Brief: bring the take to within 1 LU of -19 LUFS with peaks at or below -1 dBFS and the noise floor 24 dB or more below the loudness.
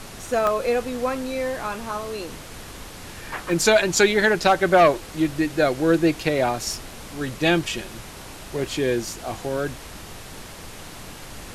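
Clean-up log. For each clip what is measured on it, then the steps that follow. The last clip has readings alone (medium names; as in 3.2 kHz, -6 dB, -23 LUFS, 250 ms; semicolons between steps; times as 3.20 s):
dropouts 3; longest dropout 1.2 ms; noise floor -40 dBFS; noise floor target -46 dBFS; loudness -22.0 LUFS; peak level -5.5 dBFS; loudness target -19.0 LUFS
-> interpolate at 0.47/3.52/6.56 s, 1.2 ms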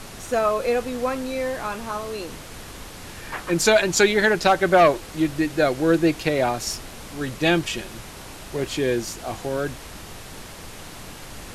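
dropouts 0; noise floor -40 dBFS; noise floor target -46 dBFS
-> noise print and reduce 6 dB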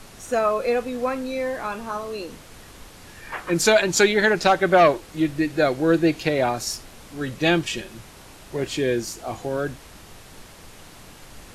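noise floor -46 dBFS; loudness -22.0 LUFS; peak level -6.0 dBFS; loudness target -19.0 LUFS
-> trim +3 dB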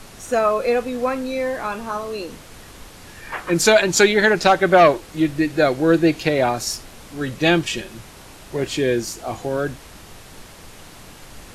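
loudness -19.0 LUFS; peak level -3.0 dBFS; noise floor -43 dBFS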